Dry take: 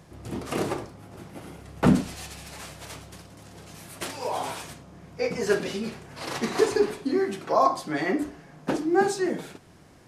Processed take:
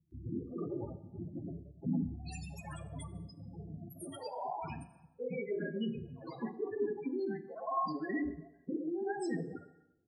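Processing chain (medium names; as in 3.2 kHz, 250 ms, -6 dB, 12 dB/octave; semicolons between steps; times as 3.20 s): pre-emphasis filter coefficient 0.8; gate -56 dBFS, range -26 dB; treble shelf 3.4 kHz -11 dB; reverse; compression 10:1, threshold -48 dBFS, peak gain reduction 20 dB; reverse; loudest bins only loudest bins 8; doubling 12 ms -13 dB; bands offset in time lows, highs 110 ms, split 540 Hz; plate-style reverb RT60 0.84 s, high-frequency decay 0.75×, DRR 12 dB; tape noise reduction on one side only encoder only; trim +17 dB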